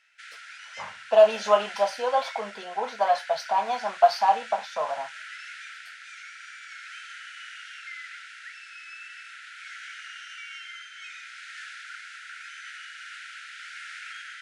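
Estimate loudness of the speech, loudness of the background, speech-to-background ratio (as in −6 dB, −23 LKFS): −24.0 LKFS, −40.5 LKFS, 16.5 dB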